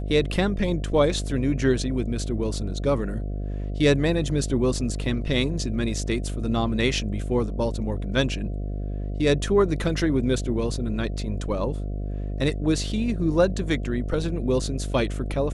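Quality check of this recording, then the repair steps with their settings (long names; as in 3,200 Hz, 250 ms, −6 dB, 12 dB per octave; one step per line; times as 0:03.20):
mains buzz 50 Hz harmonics 14 −29 dBFS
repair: hum removal 50 Hz, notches 14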